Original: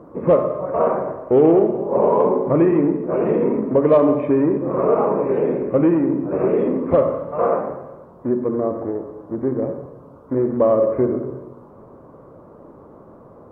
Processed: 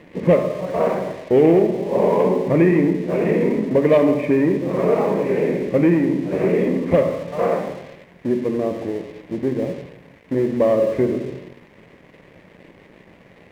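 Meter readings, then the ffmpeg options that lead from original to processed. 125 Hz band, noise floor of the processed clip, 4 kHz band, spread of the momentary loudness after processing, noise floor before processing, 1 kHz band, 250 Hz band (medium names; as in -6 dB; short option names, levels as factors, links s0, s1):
+3.0 dB, -49 dBFS, no reading, 11 LU, -45 dBFS, -3.0 dB, +0.5 dB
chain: -af "equalizer=f=180:t=o:w=0.25:g=8.5,aeval=exprs='sgn(val(0))*max(abs(val(0))-0.00447,0)':c=same,highshelf=f=1600:t=q:w=3:g=6.5"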